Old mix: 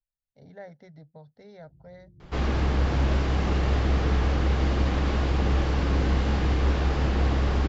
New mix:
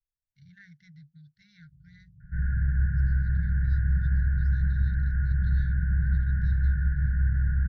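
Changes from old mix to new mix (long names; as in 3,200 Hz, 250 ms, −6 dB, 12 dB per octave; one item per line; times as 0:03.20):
second sound: add Butterworth low-pass 1,700 Hz 72 dB per octave
master: add linear-phase brick-wall band-stop 190–1,400 Hz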